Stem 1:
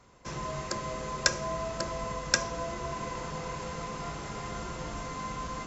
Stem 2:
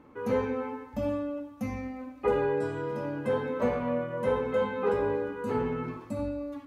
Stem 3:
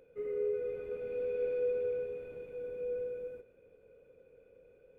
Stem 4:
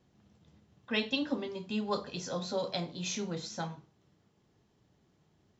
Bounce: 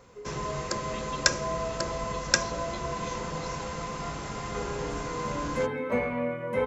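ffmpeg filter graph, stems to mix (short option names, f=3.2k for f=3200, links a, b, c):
-filter_complex "[0:a]volume=2.5dB[a];[1:a]equalizer=f=2.2k:t=o:w=0.24:g=13,adelay=2300,volume=-0.5dB[b];[2:a]volume=0.5dB[c];[3:a]volume=0dB,asplit=2[d][e];[e]apad=whole_len=395470[f];[b][f]sidechaincompress=threshold=-57dB:ratio=8:attack=16:release=1070[g];[c][d]amix=inputs=2:normalize=0,acompressor=threshold=-41dB:ratio=6,volume=0dB[h];[a][g][h]amix=inputs=3:normalize=0"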